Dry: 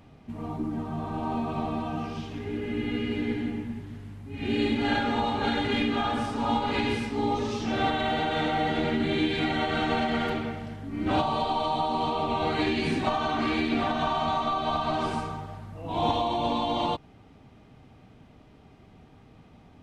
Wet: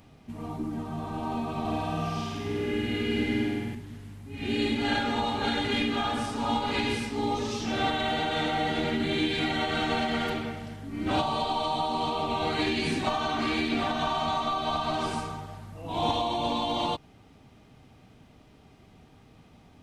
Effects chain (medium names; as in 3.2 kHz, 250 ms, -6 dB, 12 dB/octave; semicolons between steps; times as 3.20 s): treble shelf 4 kHz +9.5 dB; 1.60–3.75 s: flutter echo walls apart 8.4 m, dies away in 1.2 s; trim -2 dB